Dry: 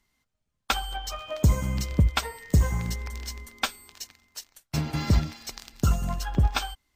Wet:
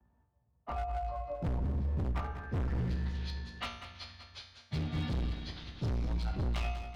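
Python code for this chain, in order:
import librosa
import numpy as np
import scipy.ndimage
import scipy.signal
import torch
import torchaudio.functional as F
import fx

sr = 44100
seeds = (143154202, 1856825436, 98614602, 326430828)

y = fx.partial_stretch(x, sr, pct=92)
y = scipy.signal.sosfilt(scipy.signal.butter(4, 41.0, 'highpass', fs=sr, output='sos'), y)
y = fx.peak_eq(y, sr, hz=92.0, db=14.0, octaves=1.4)
y = fx.comb_fb(y, sr, f0_hz=59.0, decay_s=0.56, harmonics='all', damping=0.0, mix_pct=80)
y = fx.cheby_harmonics(y, sr, harmonics=(4, 6), levels_db=(-12, -30), full_scale_db=-8.0)
y = fx.filter_sweep_lowpass(y, sr, from_hz=790.0, to_hz=3800.0, start_s=1.88, end_s=3.25, q=1.5)
y = np.clip(10.0 ** (31.0 / 20.0) * y, -1.0, 1.0) / 10.0 ** (31.0 / 20.0)
y = fx.echo_feedback(y, sr, ms=192, feedback_pct=50, wet_db=-12)
y = fx.band_squash(y, sr, depth_pct=40)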